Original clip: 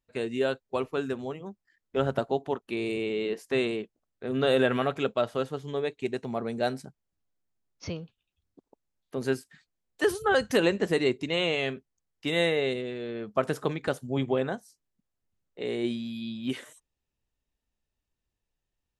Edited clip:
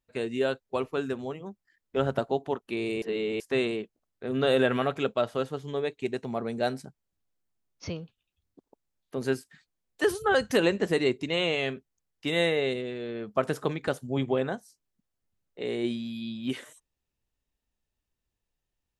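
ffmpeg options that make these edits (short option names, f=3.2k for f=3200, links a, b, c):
-filter_complex "[0:a]asplit=3[a][b][c];[a]atrim=end=3.022[d];[b]atrim=start=3.018:end=3.402,asetpts=PTS-STARTPTS,areverse[e];[c]atrim=start=3.398[f];[d][e]acrossfade=d=0.004:c1=hsin:c2=hsin[g];[g][f]acrossfade=d=0.004:c1=hsin:c2=hsin"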